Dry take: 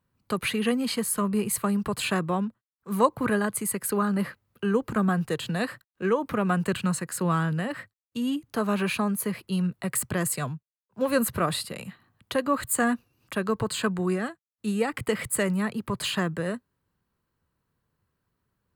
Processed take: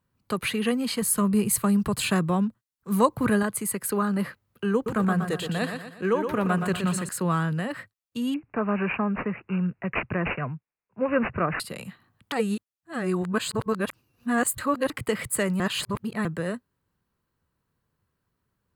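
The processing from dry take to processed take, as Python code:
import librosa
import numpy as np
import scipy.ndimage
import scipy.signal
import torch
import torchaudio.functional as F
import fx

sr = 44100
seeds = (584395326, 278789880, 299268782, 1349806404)

y = fx.bass_treble(x, sr, bass_db=6, treble_db=4, at=(1.02, 3.43))
y = fx.echo_feedback(y, sr, ms=120, feedback_pct=44, wet_db=-7, at=(4.74, 7.09))
y = fx.resample_bad(y, sr, factor=8, down='none', up='filtered', at=(8.34, 11.6))
y = fx.edit(y, sr, fx.reverse_span(start_s=12.32, length_s=2.58),
    fx.reverse_span(start_s=15.6, length_s=0.65), tone=tone)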